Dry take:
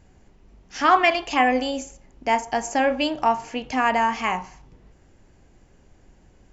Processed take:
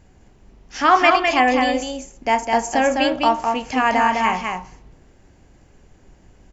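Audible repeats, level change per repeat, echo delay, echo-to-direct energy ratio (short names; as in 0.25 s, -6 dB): 1, no steady repeat, 0.206 s, -4.0 dB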